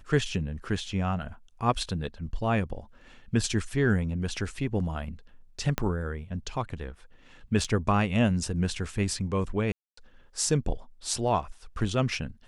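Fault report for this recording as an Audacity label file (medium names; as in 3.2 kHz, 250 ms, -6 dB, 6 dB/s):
5.780000	5.780000	pop -11 dBFS
7.640000	7.640000	dropout 4.8 ms
9.720000	9.970000	dropout 254 ms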